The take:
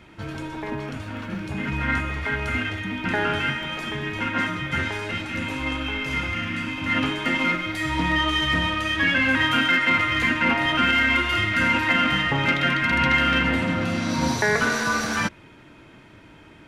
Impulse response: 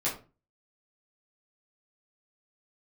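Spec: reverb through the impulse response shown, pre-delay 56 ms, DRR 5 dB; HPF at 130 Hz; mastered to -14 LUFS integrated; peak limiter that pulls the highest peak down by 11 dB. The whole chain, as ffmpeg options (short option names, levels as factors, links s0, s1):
-filter_complex "[0:a]highpass=130,alimiter=limit=0.119:level=0:latency=1,asplit=2[s0][s1];[1:a]atrim=start_sample=2205,adelay=56[s2];[s1][s2]afir=irnorm=-1:irlink=0,volume=0.251[s3];[s0][s3]amix=inputs=2:normalize=0,volume=3.76"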